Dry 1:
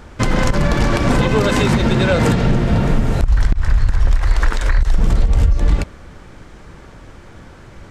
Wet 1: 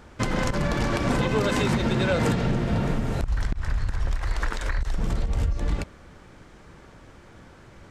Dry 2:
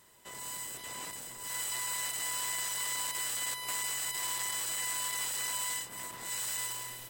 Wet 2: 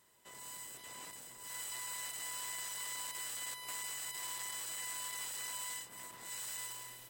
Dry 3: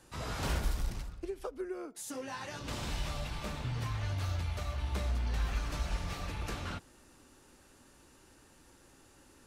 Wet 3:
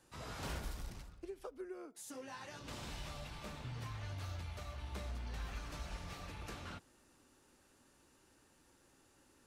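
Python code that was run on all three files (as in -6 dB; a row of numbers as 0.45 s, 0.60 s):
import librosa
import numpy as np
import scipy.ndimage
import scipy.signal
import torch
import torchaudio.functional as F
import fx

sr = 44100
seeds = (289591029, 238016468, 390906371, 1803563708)

y = fx.low_shelf(x, sr, hz=65.0, db=-6.5)
y = y * 10.0 ** (-7.5 / 20.0)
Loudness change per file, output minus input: -9.0 LU, -7.5 LU, -9.0 LU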